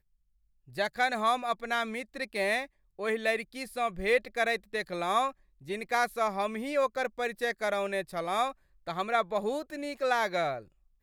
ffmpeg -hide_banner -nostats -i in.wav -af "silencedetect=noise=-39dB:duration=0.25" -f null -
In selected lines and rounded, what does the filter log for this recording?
silence_start: 0.00
silence_end: 0.77 | silence_duration: 0.77
silence_start: 2.65
silence_end: 2.99 | silence_duration: 0.34
silence_start: 5.31
silence_end: 5.68 | silence_duration: 0.37
silence_start: 8.51
silence_end: 8.87 | silence_duration: 0.36
silence_start: 10.61
silence_end: 11.02 | silence_duration: 0.42